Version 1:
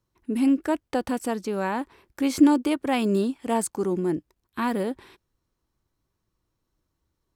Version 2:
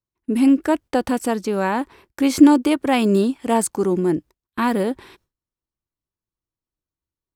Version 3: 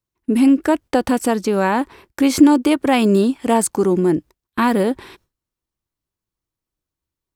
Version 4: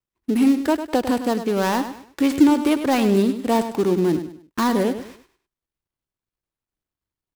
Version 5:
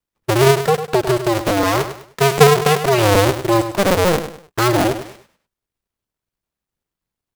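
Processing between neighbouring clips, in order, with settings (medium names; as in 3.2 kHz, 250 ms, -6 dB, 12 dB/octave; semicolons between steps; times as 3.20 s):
gate with hold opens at -45 dBFS; trim +6 dB
compression 1.5:1, threshold -20 dBFS, peak gain reduction 5.5 dB; trim +5 dB
dead-time distortion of 0.14 ms; on a send: feedback delay 101 ms, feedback 32%, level -10.5 dB; on the sum: trim -3.5 dB
cycle switcher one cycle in 2, inverted; trim +4 dB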